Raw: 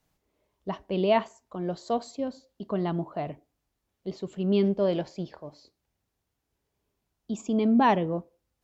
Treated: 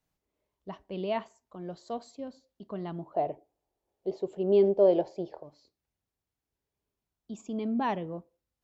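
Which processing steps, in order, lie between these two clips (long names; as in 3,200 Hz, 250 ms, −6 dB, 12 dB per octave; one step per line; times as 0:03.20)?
0:03.14–0:05.43: flat-topped bell 550 Hz +13 dB
level −8.5 dB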